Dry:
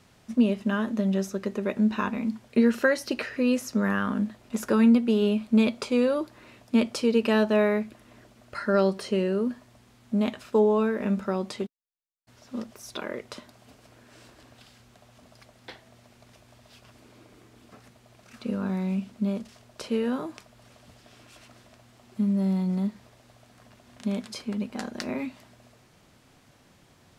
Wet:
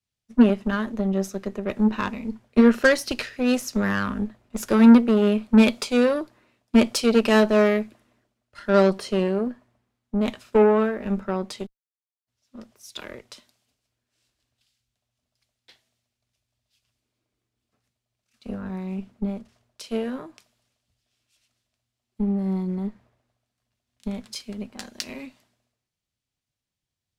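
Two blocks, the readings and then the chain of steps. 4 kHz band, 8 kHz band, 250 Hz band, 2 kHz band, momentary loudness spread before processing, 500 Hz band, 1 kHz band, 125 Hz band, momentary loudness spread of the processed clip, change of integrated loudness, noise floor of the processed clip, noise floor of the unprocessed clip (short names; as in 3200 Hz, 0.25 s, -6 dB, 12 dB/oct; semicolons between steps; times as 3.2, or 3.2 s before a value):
+5.0 dB, +5.5 dB, +3.5 dB, +4.5 dB, 15 LU, +3.5 dB, +4.5 dB, +1.5 dB, 19 LU, +4.5 dB, under -85 dBFS, -59 dBFS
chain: added harmonics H 8 -22 dB, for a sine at -10 dBFS; three-band expander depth 100%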